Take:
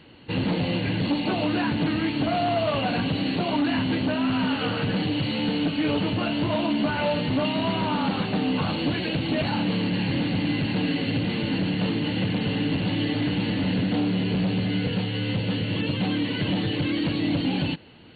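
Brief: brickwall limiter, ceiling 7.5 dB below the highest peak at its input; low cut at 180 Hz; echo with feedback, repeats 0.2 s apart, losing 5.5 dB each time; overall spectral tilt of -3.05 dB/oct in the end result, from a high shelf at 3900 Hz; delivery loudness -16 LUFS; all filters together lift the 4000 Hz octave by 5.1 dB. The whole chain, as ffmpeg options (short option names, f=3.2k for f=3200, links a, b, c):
-af "highpass=180,highshelf=f=3.9k:g=6.5,equalizer=f=4k:t=o:g=3.5,alimiter=limit=-20dB:level=0:latency=1,aecho=1:1:200|400|600|800|1000|1200|1400:0.531|0.281|0.149|0.079|0.0419|0.0222|0.0118,volume=10.5dB"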